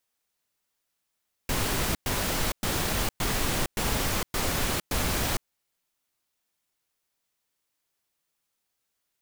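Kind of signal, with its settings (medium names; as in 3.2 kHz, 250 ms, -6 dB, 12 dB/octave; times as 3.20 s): noise bursts pink, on 0.46 s, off 0.11 s, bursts 7, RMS -27 dBFS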